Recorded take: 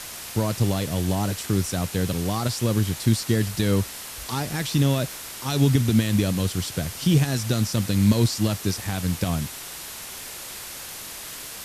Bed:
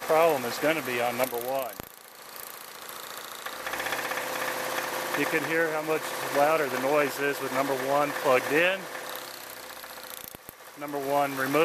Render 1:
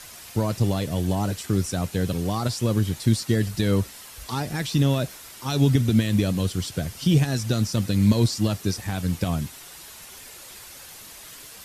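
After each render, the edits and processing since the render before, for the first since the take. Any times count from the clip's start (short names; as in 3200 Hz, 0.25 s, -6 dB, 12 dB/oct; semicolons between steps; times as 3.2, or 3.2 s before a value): denoiser 8 dB, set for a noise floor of -37 dBFS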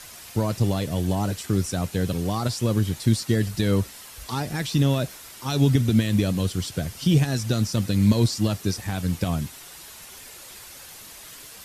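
nothing audible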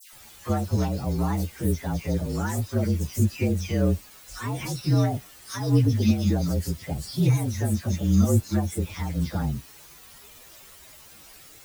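inharmonic rescaling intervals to 116%; dispersion lows, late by 0.126 s, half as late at 1700 Hz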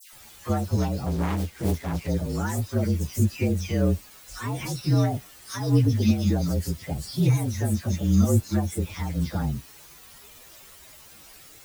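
1.06–2.08 self-modulated delay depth 0.67 ms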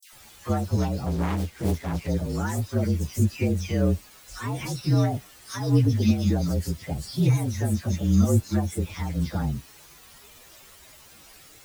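gate with hold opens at -40 dBFS; high shelf 11000 Hz -4.5 dB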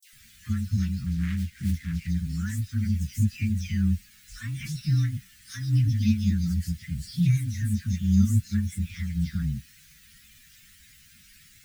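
elliptic band-stop 210–1700 Hz, stop band 60 dB; bell 14000 Hz -4.5 dB 2.7 oct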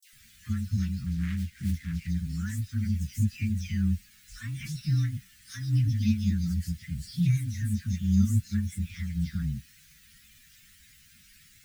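gain -2.5 dB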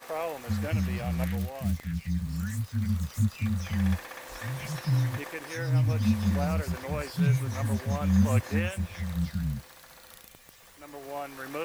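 add bed -11.5 dB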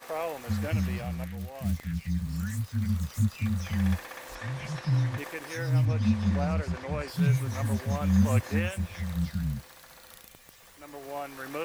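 0.89–1.73 dip -8 dB, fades 0.39 s; 4.35–5.18 air absorption 61 m; 5.85–7.08 air absorption 72 m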